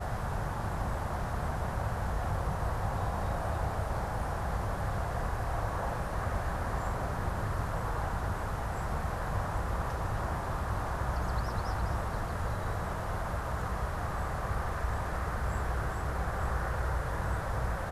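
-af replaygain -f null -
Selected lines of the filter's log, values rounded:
track_gain = +21.0 dB
track_peak = 0.072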